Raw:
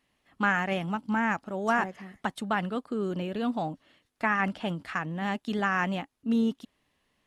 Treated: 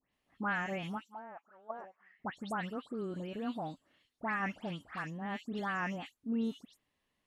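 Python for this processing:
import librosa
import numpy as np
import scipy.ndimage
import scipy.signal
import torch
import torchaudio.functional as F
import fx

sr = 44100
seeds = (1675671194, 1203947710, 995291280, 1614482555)

y = fx.auto_wah(x, sr, base_hz=540.0, top_hz=3200.0, q=4.0, full_db=-22.0, direction='down', at=(1.01, 2.19))
y = fx.dispersion(y, sr, late='highs', ms=140.0, hz=2900.0)
y = y * 10.0 ** (-8.5 / 20.0)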